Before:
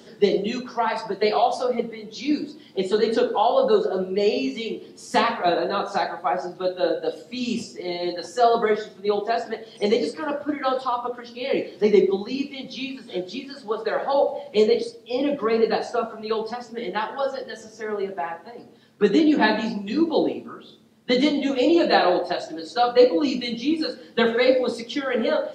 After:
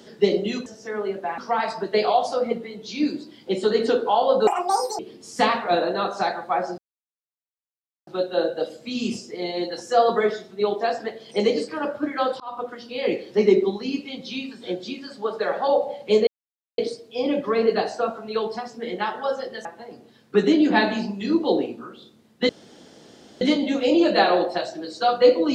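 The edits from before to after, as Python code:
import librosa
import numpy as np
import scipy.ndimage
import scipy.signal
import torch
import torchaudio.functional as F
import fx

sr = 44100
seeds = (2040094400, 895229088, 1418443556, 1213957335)

y = fx.edit(x, sr, fx.speed_span(start_s=3.75, length_s=0.99, speed=1.9),
    fx.insert_silence(at_s=6.53, length_s=1.29),
    fx.fade_in_span(start_s=10.86, length_s=0.36, curve='qsin'),
    fx.insert_silence(at_s=14.73, length_s=0.51),
    fx.move(start_s=17.6, length_s=0.72, to_s=0.66),
    fx.insert_room_tone(at_s=21.16, length_s=0.92), tone=tone)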